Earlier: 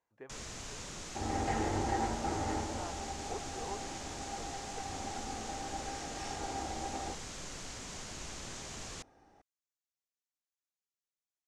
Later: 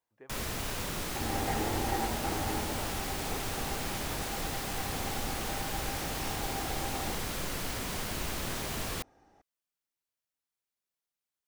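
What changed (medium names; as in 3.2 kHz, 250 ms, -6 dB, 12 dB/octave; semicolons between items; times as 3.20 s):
speech -3.0 dB; first sound: remove four-pole ladder low-pass 7.7 kHz, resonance 55%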